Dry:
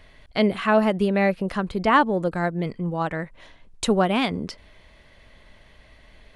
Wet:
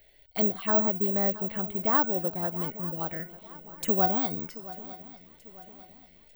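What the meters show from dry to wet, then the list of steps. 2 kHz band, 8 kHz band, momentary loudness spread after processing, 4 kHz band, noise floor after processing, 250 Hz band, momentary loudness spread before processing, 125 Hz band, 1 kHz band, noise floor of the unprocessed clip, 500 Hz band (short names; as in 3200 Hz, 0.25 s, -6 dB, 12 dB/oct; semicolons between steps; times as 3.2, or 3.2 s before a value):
-12.0 dB, -8.0 dB, 17 LU, -13.0 dB, -58 dBFS, -8.5 dB, 12 LU, -9.0 dB, -8.0 dB, -53 dBFS, -8.0 dB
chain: low shelf 73 Hz -9 dB; resonator 740 Hz, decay 0.42 s, mix 80%; envelope phaser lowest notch 180 Hz, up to 2600 Hz, full sweep at -33.5 dBFS; on a send: swung echo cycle 0.896 s, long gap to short 3:1, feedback 41%, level -17 dB; on the sum: careless resampling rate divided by 2×, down none, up zero stuff; gain +6 dB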